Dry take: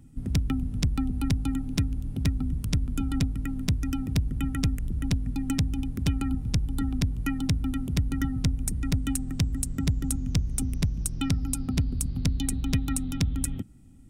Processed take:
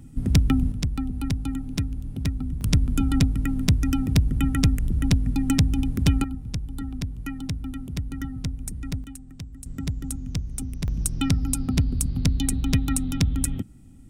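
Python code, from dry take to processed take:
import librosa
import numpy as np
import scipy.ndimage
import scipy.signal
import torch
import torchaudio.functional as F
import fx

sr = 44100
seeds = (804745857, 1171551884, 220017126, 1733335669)

y = fx.gain(x, sr, db=fx.steps((0.0, 7.0), (0.72, -0.5), (2.61, 6.0), (6.24, -4.0), (9.04, -12.0), (9.66, -3.0), (10.88, 4.0)))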